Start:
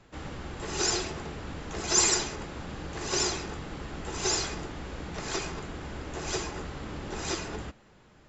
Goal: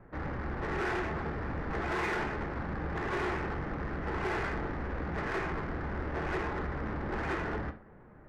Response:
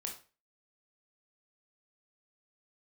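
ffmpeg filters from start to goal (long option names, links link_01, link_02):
-filter_complex "[0:a]lowpass=frequency=1900:width_type=q:width=2.3,asoftclip=type=tanh:threshold=-32dB,adynamicsmooth=sensitivity=6:basefreq=1000,asplit=2[link_01][link_02];[1:a]atrim=start_sample=2205,lowpass=3400[link_03];[link_02][link_03]afir=irnorm=-1:irlink=0,volume=-1dB[link_04];[link_01][link_04]amix=inputs=2:normalize=0"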